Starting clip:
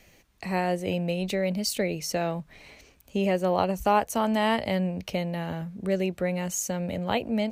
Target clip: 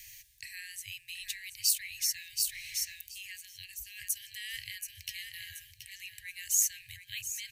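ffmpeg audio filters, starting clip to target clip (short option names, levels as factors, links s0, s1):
-af "aecho=1:1:728|1456|2184|2912:0.316|0.101|0.0324|0.0104,areverse,acompressor=threshold=0.02:ratio=5,areverse,afftfilt=real='re*(1-between(b*sr/4096,130,1600))':imag='im*(1-between(b*sr/4096,130,1600))':win_size=4096:overlap=0.75,crystalizer=i=6:c=0,volume=0.631"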